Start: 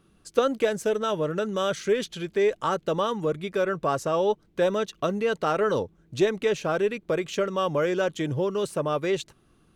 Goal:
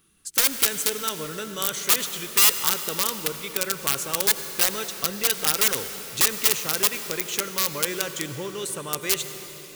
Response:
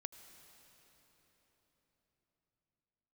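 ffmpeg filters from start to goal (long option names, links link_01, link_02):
-filter_complex "[0:a]equalizer=frequency=630:width_type=o:width=0.33:gain=-9,equalizer=frequency=2000:width_type=o:width=0.33:gain=4,equalizer=frequency=5000:width_type=o:width=0.33:gain=-4,aeval=exprs='(mod(7.94*val(0)+1,2)-1)/7.94':channel_layout=same,crystalizer=i=7:c=0[link_01];[1:a]atrim=start_sample=2205[link_02];[link_01][link_02]afir=irnorm=-1:irlink=0,volume=-3dB"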